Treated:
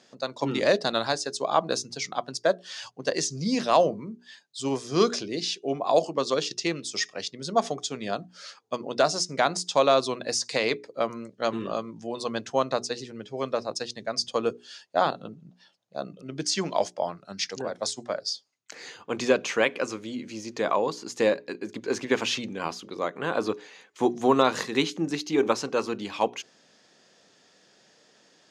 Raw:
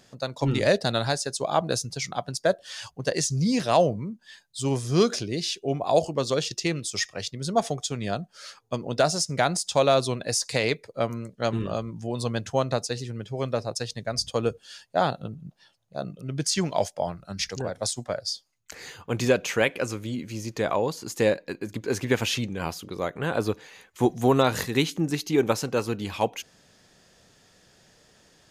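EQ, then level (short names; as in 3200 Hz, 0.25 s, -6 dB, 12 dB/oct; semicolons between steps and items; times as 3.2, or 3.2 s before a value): Chebyshev band-pass 250–6000 Hz, order 2; notches 60/120/180/240/300/360/420 Hz; dynamic EQ 1100 Hz, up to +6 dB, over -46 dBFS, Q 3.6; 0.0 dB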